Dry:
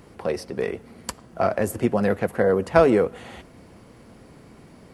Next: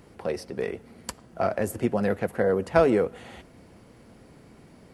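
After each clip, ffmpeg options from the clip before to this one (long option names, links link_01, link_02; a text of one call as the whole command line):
ffmpeg -i in.wav -af "equalizer=frequency=1100:width_type=o:width=0.25:gain=-3,volume=-3.5dB" out.wav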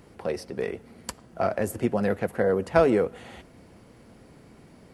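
ffmpeg -i in.wav -af anull out.wav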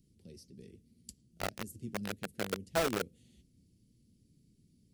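ffmpeg -i in.wav -filter_complex "[0:a]flanger=delay=4.8:depth=6.6:regen=-69:speed=1.8:shape=sinusoidal,acrossover=split=290|3600[link_01][link_02][link_03];[link_02]acrusher=bits=3:mix=0:aa=0.000001[link_04];[link_01][link_04][link_03]amix=inputs=3:normalize=0,volume=-8dB" out.wav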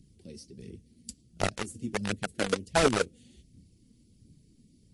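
ffmpeg -i in.wav -af "aphaser=in_gain=1:out_gain=1:delay=4.6:decay=0.45:speed=1.4:type=triangular,volume=7dB" -ar 24000 -c:a libmp3lame -b:a 48k out.mp3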